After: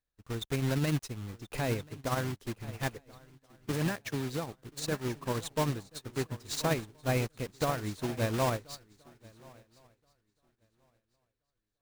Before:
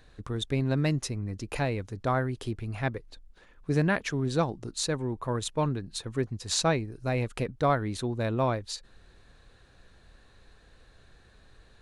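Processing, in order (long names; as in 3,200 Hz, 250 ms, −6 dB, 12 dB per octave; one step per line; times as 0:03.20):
one scale factor per block 3 bits
0:03.71–0:04.51: high-pass filter 97 Hz 12 dB per octave
brickwall limiter −21.5 dBFS, peak gain reduction 9 dB
on a send: feedback echo with a long and a short gap by turns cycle 1,375 ms, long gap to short 3 to 1, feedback 43%, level −11 dB
on the sum: expander for the loud parts 2.5 to 1, over −51 dBFS
level +1.5 dB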